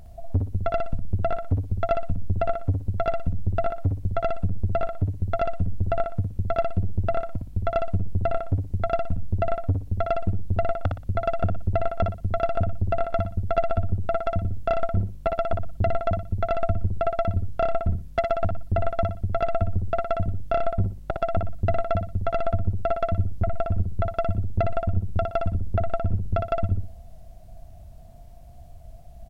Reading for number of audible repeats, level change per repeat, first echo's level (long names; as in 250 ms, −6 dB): 3, −11.0 dB, −4.5 dB